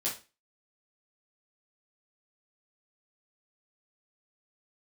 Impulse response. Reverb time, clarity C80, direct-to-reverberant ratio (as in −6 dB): 0.30 s, 15.0 dB, −7.0 dB